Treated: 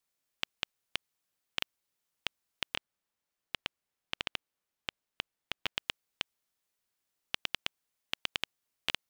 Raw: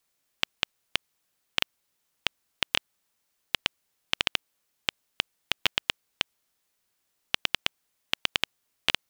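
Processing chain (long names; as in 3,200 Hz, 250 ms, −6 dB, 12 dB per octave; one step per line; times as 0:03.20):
0:02.73–0:05.77: high-shelf EQ 3,700 Hz −7 dB
level −8 dB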